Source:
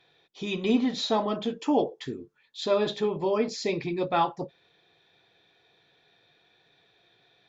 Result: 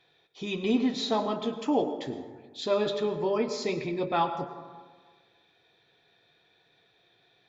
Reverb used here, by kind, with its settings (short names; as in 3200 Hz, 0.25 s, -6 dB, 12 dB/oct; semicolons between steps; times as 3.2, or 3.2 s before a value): plate-style reverb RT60 1.5 s, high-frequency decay 0.4×, pre-delay 90 ms, DRR 9.5 dB; gain -2 dB